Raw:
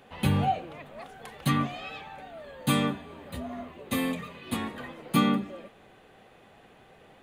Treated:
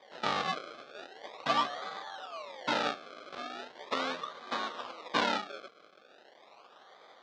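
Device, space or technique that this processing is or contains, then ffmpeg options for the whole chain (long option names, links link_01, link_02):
circuit-bent sampling toy: -af "acrusher=samples=32:mix=1:aa=0.000001:lfo=1:lforange=32:lforate=0.39,highpass=570,equalizer=frequency=580:width_type=q:width=4:gain=3,equalizer=frequency=1200:width_type=q:width=4:gain=7,equalizer=frequency=3700:width_type=q:width=4:gain=6,lowpass=frequency=5200:width=0.5412,lowpass=frequency=5200:width=1.3066"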